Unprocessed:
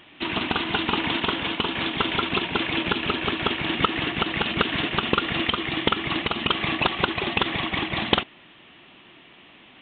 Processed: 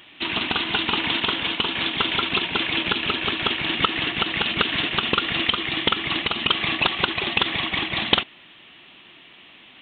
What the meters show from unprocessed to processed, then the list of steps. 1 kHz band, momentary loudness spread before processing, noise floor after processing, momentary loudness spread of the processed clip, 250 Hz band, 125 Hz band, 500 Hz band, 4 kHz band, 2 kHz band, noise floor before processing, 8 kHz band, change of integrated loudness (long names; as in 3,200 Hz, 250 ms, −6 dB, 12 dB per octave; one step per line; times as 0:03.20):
−0.5 dB, 2 LU, −49 dBFS, 2 LU, −2.5 dB, −2.5 dB, −2.0 dB, +4.5 dB, +2.5 dB, −51 dBFS, can't be measured, +2.5 dB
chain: high-shelf EQ 2,300 Hz +10.5 dB
level −2.5 dB